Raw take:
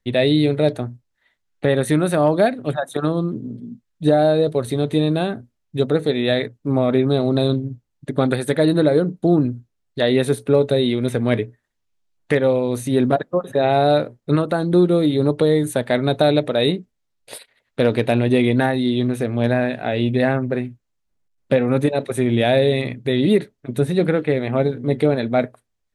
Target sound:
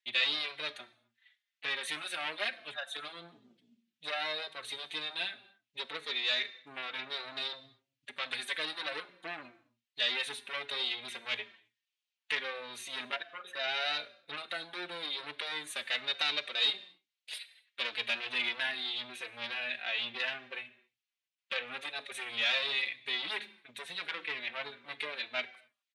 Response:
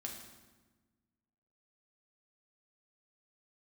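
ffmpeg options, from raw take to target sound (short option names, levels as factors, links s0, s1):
-filter_complex "[0:a]aemphasis=mode=reproduction:type=riaa,acontrast=83,highpass=f=2800:t=q:w=1.9,asplit=2[s0][s1];[1:a]atrim=start_sample=2205,afade=t=out:st=0.32:d=0.01,atrim=end_sample=14553[s2];[s1][s2]afir=irnorm=-1:irlink=0,volume=0.422[s3];[s0][s3]amix=inputs=2:normalize=0,asplit=2[s4][s5];[s5]adelay=4.2,afreqshift=-3[s6];[s4][s6]amix=inputs=2:normalize=1,volume=0.596"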